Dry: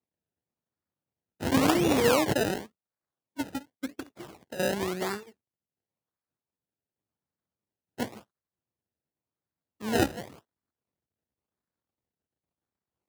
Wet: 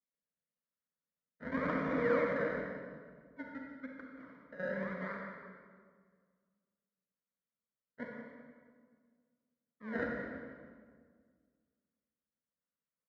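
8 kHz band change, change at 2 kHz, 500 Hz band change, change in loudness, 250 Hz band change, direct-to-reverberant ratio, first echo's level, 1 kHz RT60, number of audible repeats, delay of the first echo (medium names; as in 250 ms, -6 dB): under -35 dB, -5.5 dB, -7.5 dB, -10.0 dB, -10.5 dB, -0.5 dB, -11.5 dB, 1.7 s, 1, 181 ms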